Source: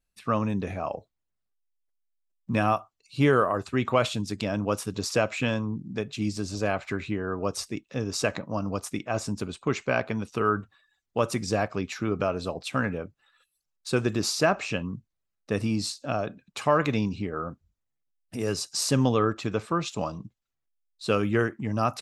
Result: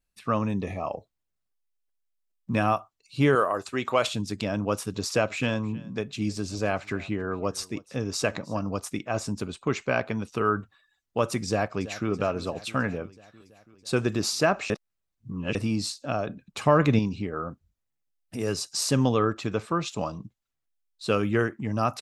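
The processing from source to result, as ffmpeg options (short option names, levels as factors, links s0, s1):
-filter_complex "[0:a]asettb=1/sr,asplit=3[s0][s1][s2];[s0]atrim=end=0.524[s3];[s1]atrim=start=0.52:end=0.92,asetpts=PTS-STARTPTS,afade=t=in:d=0.004:c=qsin,afade=t=out:st=0.396:d=0.004:c=qsin,asuperstop=centerf=1500:order=12:qfactor=4.2[s4];[s2]atrim=start=0.916[s5];[s3][s4]acrossfade=d=0.004:c1=hsin:c2=qsin[s6];[s6][s5]acrossfade=d=0.004:c1=qsin:c2=hsin,asettb=1/sr,asplit=3[s7][s8][s9];[s7]atrim=end=3.354[s10];[s8]atrim=start=3.35:end=4.07,asetpts=PTS-STARTPTS,afade=t=in:d=0.004:c=qsin,afade=t=out:st=0.716:d=0.004:c=qsin,bass=f=250:g=-10,treble=f=4000:g=6[s11];[s9]atrim=start=4.066[s12];[s10][s11]acrossfade=d=0.004:c1=hsin:c2=qsin[s13];[s13][s12]acrossfade=d=0.004:c1=qsin:c2=hsin,asettb=1/sr,asplit=3[s14][s15][s16];[s14]atrim=end=4.824[s17];[s15]atrim=start=4.82:end=8.63,asetpts=PTS-STARTPTS,afade=t=in:d=0.004:c=qsin,afade=t=out:st=3.806:d=0.004:c=qsin,aecho=1:1:314:0.0794,atrim=end_sample=168021[s18];[s16]atrim=start=8.626[s19];[s17][s18]acrossfade=d=0.004:c1=hsin:c2=qsin[s20];[s20][s19]acrossfade=d=0.004:c1=qsin:c2=hsin,asplit=2[s21][s22];[s22]afade=t=in:st=11.47:d=0.01,afade=t=out:st=12.09:d=0.01,aecho=0:1:330|660|990|1320|1650|1980|2310|2640:0.16788|0.117516|0.0822614|0.057583|0.0403081|0.0282157|0.019751|0.0138257[s23];[s21][s23]amix=inputs=2:normalize=0,asettb=1/sr,asplit=3[s24][s25][s26];[s24]atrim=end=16.284[s27];[s25]atrim=start=16.28:end=16.99,asetpts=PTS-STARTPTS,afade=t=in:d=0.004:c=qsin,afade=t=out:st=0.706:d=0.004:c=qsin,lowshelf=f=330:g=8.5[s28];[s26]atrim=start=16.986[s29];[s27][s28]acrossfade=d=0.004:c1=hsin:c2=qsin[s30];[s30][s29]acrossfade=d=0.004:c1=qsin:c2=hsin,asplit=3[s31][s32][s33];[s31]atrim=end=14.702[s34];[s32]atrim=start=14.698:end=15.552,asetpts=PTS-STARTPTS,areverse[s35];[s33]atrim=start=15.548[s36];[s34][s35]acrossfade=d=0.004:c1=hsin:c2=hsin[s37];[s37][s36]acrossfade=d=0.004:c1=hsin:c2=hsin"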